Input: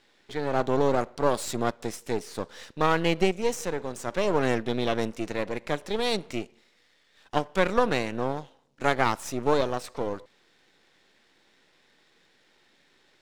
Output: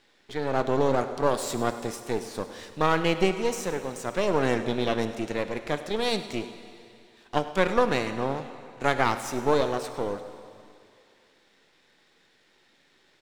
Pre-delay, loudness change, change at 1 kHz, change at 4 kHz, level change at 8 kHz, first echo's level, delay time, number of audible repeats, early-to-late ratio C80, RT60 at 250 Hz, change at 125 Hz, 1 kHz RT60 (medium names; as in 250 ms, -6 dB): 15 ms, +0.5 dB, +0.5 dB, +0.5 dB, +0.5 dB, -17.0 dB, 102 ms, 1, 10.5 dB, 2.4 s, +0.5 dB, 2.6 s